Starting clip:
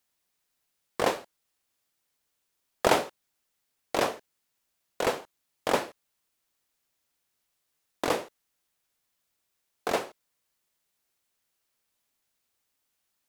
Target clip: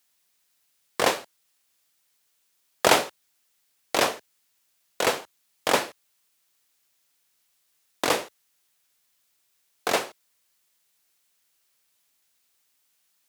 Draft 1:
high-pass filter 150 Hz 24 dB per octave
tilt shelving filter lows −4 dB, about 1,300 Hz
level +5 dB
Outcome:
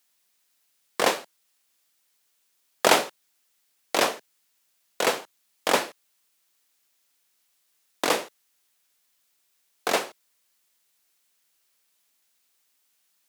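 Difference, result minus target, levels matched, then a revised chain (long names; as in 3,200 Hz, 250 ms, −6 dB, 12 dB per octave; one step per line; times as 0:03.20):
125 Hz band −3.5 dB
high-pass filter 73 Hz 24 dB per octave
tilt shelving filter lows −4 dB, about 1,300 Hz
level +5 dB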